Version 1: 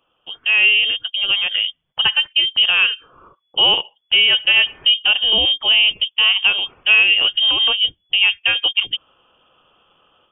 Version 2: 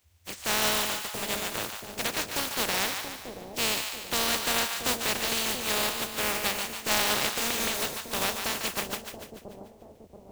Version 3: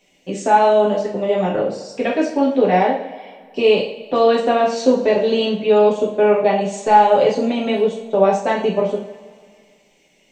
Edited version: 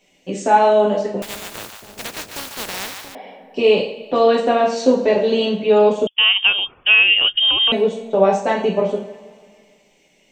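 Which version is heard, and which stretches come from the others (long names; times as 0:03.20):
3
0:01.22–0:03.15: punch in from 2
0:06.07–0:07.72: punch in from 1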